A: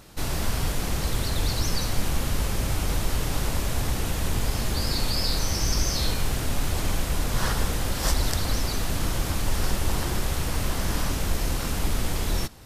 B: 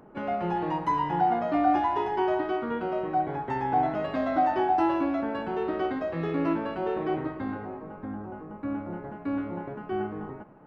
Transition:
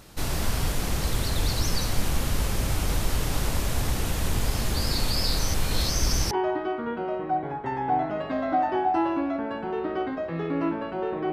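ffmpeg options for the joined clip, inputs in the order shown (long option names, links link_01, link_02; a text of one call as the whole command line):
ffmpeg -i cue0.wav -i cue1.wav -filter_complex "[0:a]apad=whole_dur=11.32,atrim=end=11.32,asplit=2[link_01][link_02];[link_01]atrim=end=5.542[link_03];[link_02]atrim=start=5.538:end=6.312,asetpts=PTS-STARTPTS,areverse[link_04];[1:a]atrim=start=2.148:end=7.16[link_05];[link_03][link_04]acrossfade=duration=0.004:curve1=hsin:curve2=hsin[link_06];[link_06][link_05]acrossfade=duration=0.004:curve1=hsin:curve2=hsin" out.wav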